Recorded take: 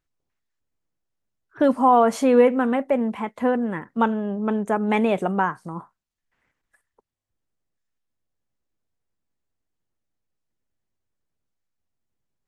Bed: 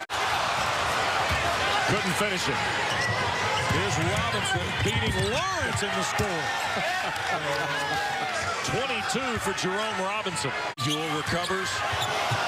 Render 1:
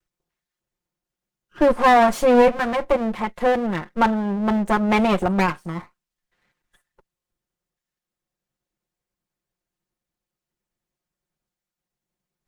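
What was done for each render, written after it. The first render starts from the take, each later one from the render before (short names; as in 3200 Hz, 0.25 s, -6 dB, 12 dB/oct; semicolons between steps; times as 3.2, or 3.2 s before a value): minimum comb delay 5.6 ms; in parallel at -7 dB: hard clip -16 dBFS, distortion -12 dB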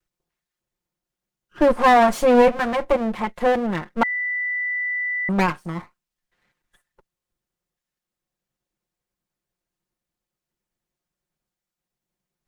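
4.03–5.29 bleep 1980 Hz -22 dBFS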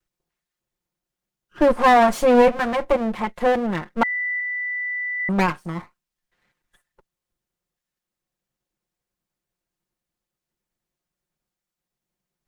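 4.4–5.2 air absorption 190 m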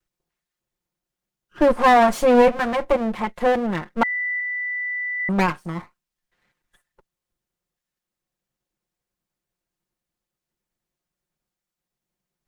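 nothing audible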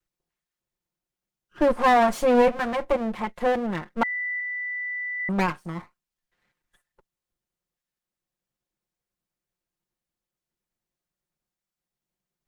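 gain -4 dB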